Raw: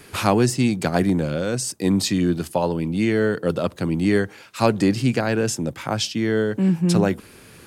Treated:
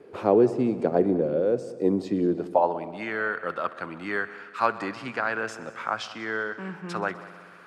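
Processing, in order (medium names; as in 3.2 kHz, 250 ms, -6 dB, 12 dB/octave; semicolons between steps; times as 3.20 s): band-pass sweep 450 Hz -> 1.3 kHz, 2.25–2.99 s; multi-head delay 63 ms, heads all three, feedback 61%, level -21 dB; trim +4.5 dB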